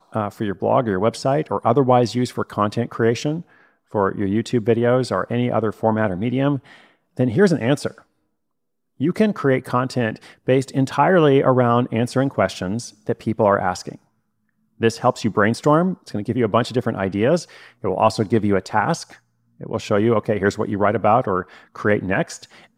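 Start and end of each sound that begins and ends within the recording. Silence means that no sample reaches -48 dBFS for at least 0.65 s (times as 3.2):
9–13.97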